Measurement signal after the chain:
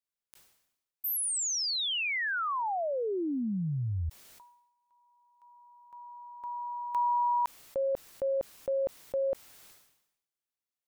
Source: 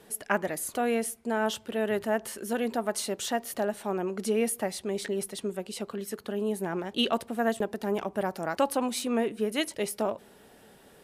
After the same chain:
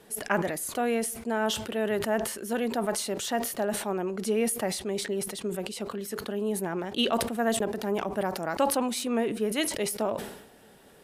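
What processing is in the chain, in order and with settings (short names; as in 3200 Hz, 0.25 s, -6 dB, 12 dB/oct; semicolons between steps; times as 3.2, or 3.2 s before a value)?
sustainer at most 68 dB/s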